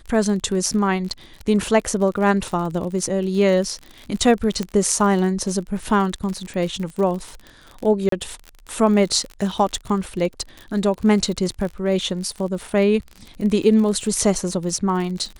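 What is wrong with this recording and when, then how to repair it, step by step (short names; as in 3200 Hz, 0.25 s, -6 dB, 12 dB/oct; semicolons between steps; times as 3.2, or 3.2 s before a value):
crackle 50/s -28 dBFS
4.63 pop -12 dBFS
8.09–8.12 gap 33 ms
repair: de-click; interpolate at 8.09, 33 ms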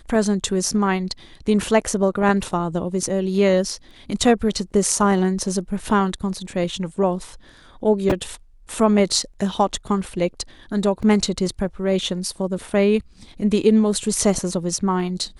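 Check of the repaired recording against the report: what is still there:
none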